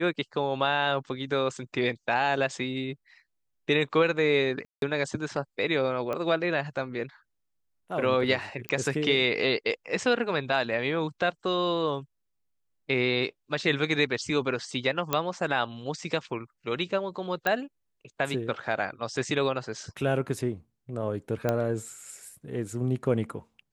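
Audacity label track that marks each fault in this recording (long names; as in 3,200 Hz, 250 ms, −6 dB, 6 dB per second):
4.650000	4.820000	drop-out 172 ms
6.130000	6.130000	click −19 dBFS
8.690000	8.690000	click −14 dBFS
15.130000	15.130000	click −9 dBFS
17.470000	17.470000	click −12 dBFS
21.490000	21.490000	click −13 dBFS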